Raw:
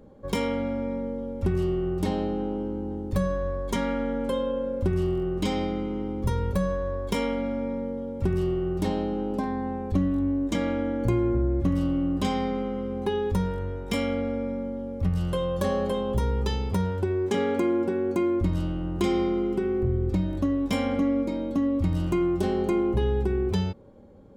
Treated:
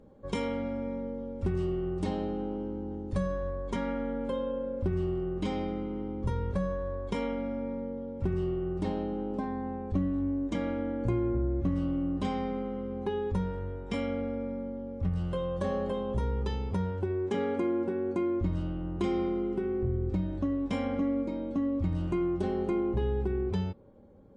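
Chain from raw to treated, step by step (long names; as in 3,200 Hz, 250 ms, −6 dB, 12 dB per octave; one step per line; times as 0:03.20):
high-shelf EQ 4,000 Hz −4 dB, from 0:03.50 −11.5 dB
level −4.5 dB
MP3 40 kbit/s 22,050 Hz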